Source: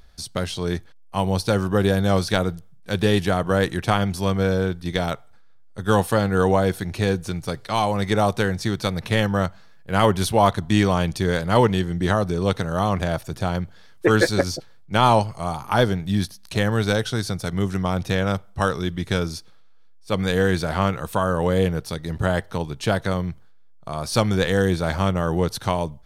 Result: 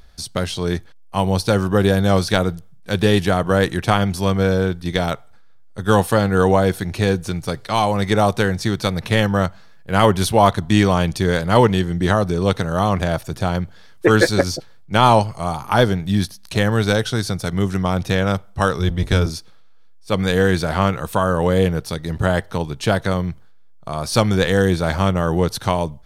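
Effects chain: 18.79–19.3 octaver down 1 oct, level 0 dB; gain +3.5 dB

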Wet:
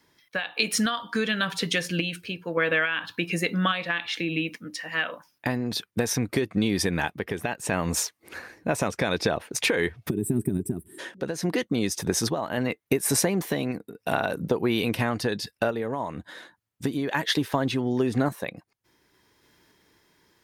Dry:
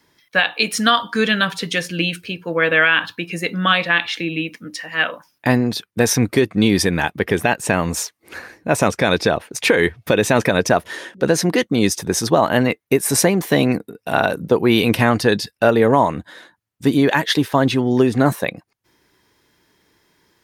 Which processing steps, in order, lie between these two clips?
spectral gain 10.09–10.99, 430–7500 Hz -29 dB; compressor, threshold -20 dBFS, peak gain reduction 10.5 dB; random-step tremolo

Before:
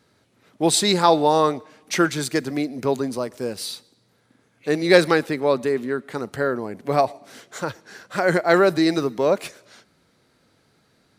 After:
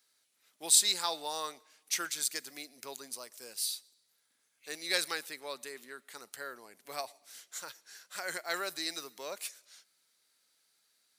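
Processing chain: differentiator; gain -1.5 dB

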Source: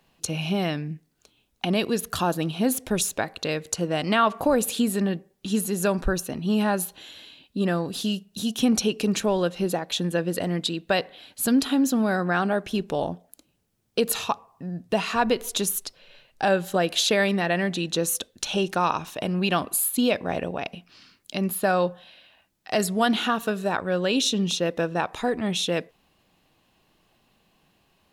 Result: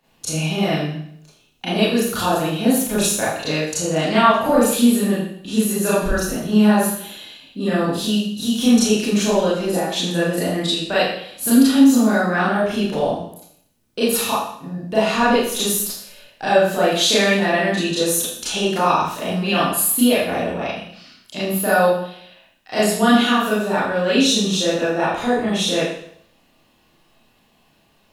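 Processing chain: Schroeder reverb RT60 0.66 s, combs from 26 ms, DRR -10 dB; gain -4 dB

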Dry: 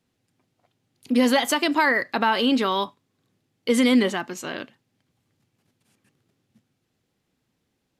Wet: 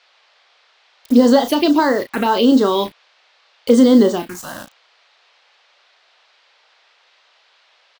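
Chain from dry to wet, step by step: dynamic EQ 370 Hz, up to +7 dB, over -32 dBFS, Q 0.8; requantised 6-bit, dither none; envelope phaser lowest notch 240 Hz, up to 2400 Hz, full sweep at -13.5 dBFS; band noise 510–4400 Hz -61 dBFS; doubler 34 ms -9 dB; gain +4 dB

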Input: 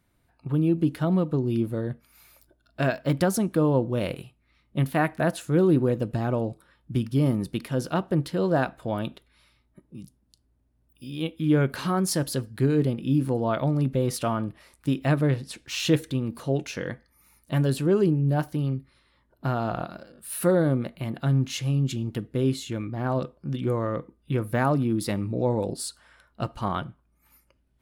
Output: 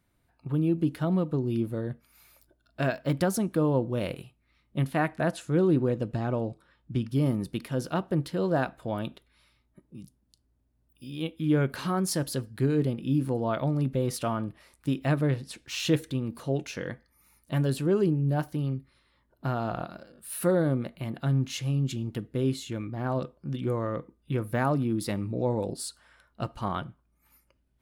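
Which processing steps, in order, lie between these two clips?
4.85–7.07 LPF 11000 Hz -> 6400 Hz 12 dB/oct; gain -3 dB

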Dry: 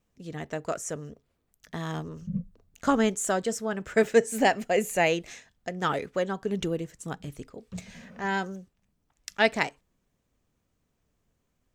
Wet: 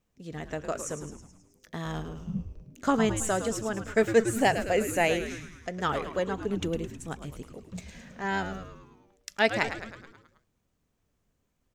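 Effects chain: frequency-shifting echo 0.107 s, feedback 57%, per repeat -110 Hz, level -9.5 dB; gain -1.5 dB

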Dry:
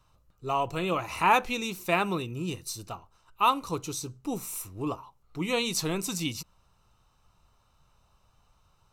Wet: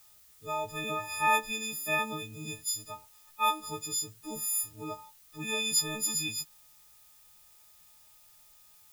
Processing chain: frequency quantiser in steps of 6 st; added noise blue -50 dBFS; gain -9 dB

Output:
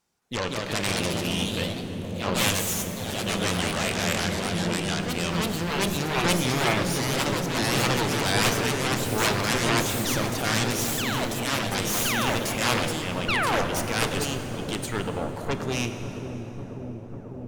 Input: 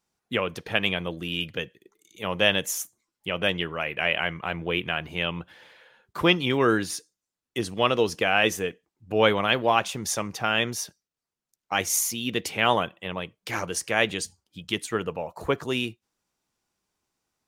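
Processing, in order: in parallel at +1 dB: compressor, threshold -34 dBFS, peak gain reduction 18.5 dB; on the sum: transient shaper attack -5 dB, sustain +1 dB; painted sound fall, 13.28–13.62, 220–1500 Hz -18 dBFS; added harmonics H 7 -8 dB, 8 -10 dB, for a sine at -4.5 dBFS; on a send: dark delay 0.545 s, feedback 81%, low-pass 400 Hz, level -5 dB; on the sum: plate-style reverb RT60 4 s, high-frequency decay 0.65×, pre-delay 0 ms, DRR 7 dB; echoes that change speed 0.218 s, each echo +2 st, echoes 3; gain -8 dB

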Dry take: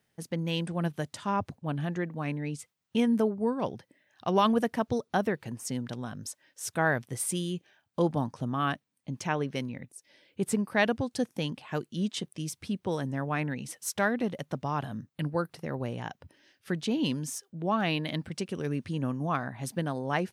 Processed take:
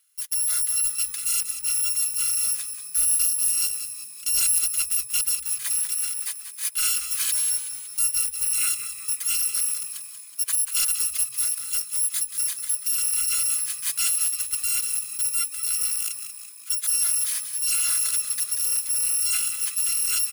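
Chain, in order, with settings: FFT order left unsorted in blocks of 256 samples; HPF 1300 Hz 24 dB/oct; bell 10000 Hz +12 dB 0.32 oct; in parallel at -2.5 dB: negative-ratio compressor -29 dBFS; on the sum: soft clip -15 dBFS, distortion -19 dB; on a send: frequency-shifting echo 0.186 s, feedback 57%, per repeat -64 Hz, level -10 dB

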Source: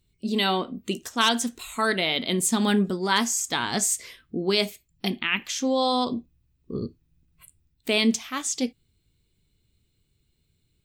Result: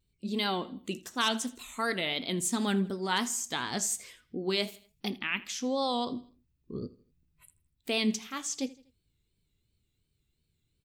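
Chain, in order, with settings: vibrato 2.8 Hz 87 cents; feedback echo 81 ms, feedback 41%, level -20 dB; gain -7 dB

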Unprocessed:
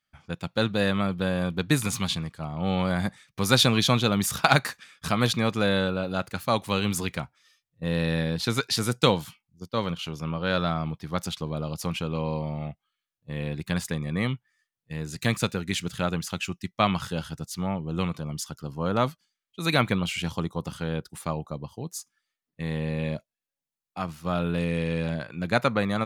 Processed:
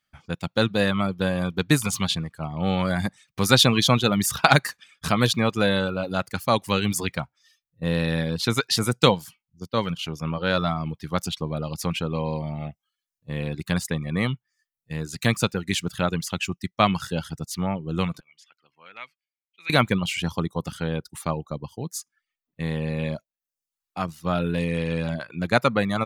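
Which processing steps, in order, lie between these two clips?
18.2–19.7 band-pass 2300 Hz, Q 6.1; reverb removal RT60 0.6 s; gain +3.5 dB

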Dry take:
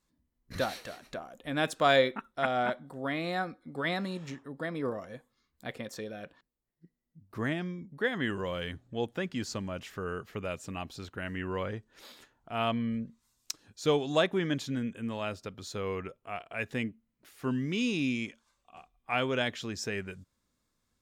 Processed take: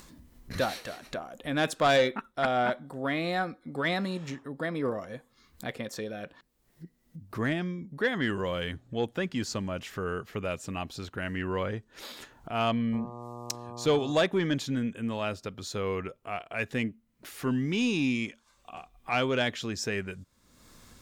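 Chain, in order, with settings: 12.92–14.11 buzz 120 Hz, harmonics 10, -46 dBFS -2 dB/oct; upward compressor, threshold -39 dBFS; soft clip -19.5 dBFS, distortion -17 dB; gain +3.5 dB

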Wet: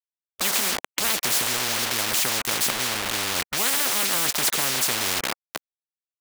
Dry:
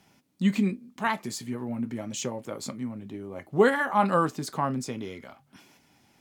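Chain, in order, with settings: bit-crush 7-bit; tone controls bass -15 dB, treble -2 dB; spectral compressor 10:1; gain +4.5 dB

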